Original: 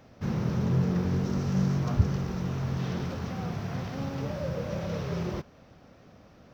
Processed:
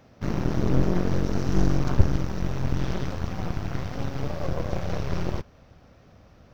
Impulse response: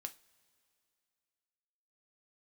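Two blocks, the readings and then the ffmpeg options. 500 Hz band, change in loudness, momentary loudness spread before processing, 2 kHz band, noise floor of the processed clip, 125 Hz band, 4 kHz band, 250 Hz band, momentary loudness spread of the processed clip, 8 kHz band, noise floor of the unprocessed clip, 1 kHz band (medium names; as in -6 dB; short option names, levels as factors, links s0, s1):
+3.5 dB, +2.0 dB, 8 LU, +4.0 dB, -54 dBFS, +1.5 dB, +3.0 dB, +1.5 dB, 8 LU, no reading, -55 dBFS, +4.0 dB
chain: -af "aeval=exprs='0.299*(cos(1*acos(clip(val(0)/0.299,-1,1)))-cos(1*PI/2))+0.0944*(cos(4*acos(clip(val(0)/0.299,-1,1)))-cos(4*PI/2))+0.0335*(cos(8*acos(clip(val(0)/0.299,-1,1)))-cos(8*PI/2))':c=same,asubboost=boost=2.5:cutoff=110"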